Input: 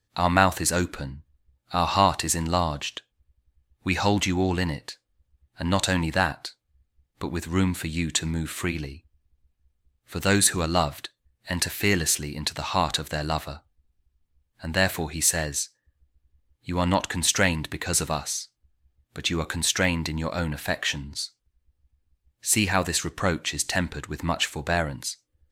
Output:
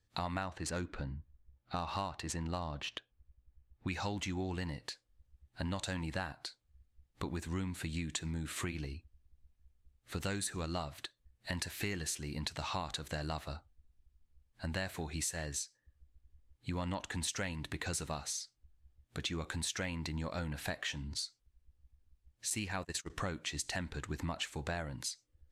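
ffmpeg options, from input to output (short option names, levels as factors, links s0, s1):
-filter_complex "[0:a]asettb=1/sr,asplit=3[s0][s1][s2];[s0]atrim=end=0.424[s3];[s1]atrim=start=0.42:end=3.88,asetpts=PTS-STARTPTS,afade=t=in:d=0.004:c=qsin,afade=t=out:st=3.456:d=0.004:c=qsin,adynamicsmooth=sensitivity=2:basefreq=3500[s4];[s2]atrim=start=3.876[s5];[s3][s4]acrossfade=d=0.004:c1=hsin:c2=qsin[s6];[s6][s5]acrossfade=d=0.004:c1=qsin:c2=hsin,asettb=1/sr,asplit=3[s7][s8][s9];[s7]atrim=end=22.504[s10];[s8]atrim=start=22.5:end=23.1,asetpts=PTS-STARTPTS,afade=t=in:d=0.004:c=qsin,afade=t=out:st=0.596:d=0.004:c=qsin,agate=range=0.0501:threshold=0.0398:ratio=16:release=100:detection=peak[s11];[s9]atrim=start=23.096[s12];[s10][s11]acrossfade=d=0.004:c1=hsin:c2=qsin[s13];[s13][s12]acrossfade=d=0.004:c1=qsin:c2=hsin,lowpass=11000,lowshelf=f=71:g=6.5,acompressor=threshold=0.0251:ratio=6,volume=0.668"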